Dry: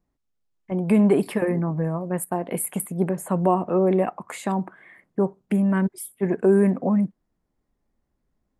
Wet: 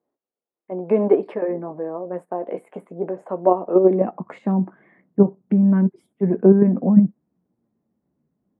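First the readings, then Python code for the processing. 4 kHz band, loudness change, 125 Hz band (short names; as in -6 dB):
n/a, +3.5 dB, +2.0 dB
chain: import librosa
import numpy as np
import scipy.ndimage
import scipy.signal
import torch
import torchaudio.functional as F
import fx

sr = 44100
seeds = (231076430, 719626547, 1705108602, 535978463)

p1 = fx.chorus_voices(x, sr, voices=4, hz=0.47, base_ms=13, depth_ms=4.4, mix_pct=25)
p2 = fx.level_steps(p1, sr, step_db=20)
p3 = p1 + F.gain(torch.from_numpy(p2), 2.5).numpy()
p4 = fx.tilt_shelf(p3, sr, db=4.5, hz=930.0)
p5 = fx.filter_sweep_highpass(p4, sr, from_hz=460.0, to_hz=170.0, start_s=3.66, end_s=4.2, q=1.4)
p6 = fx.spacing_loss(p5, sr, db_at_10k=34)
y = F.gain(torch.from_numpy(p6), -1.0).numpy()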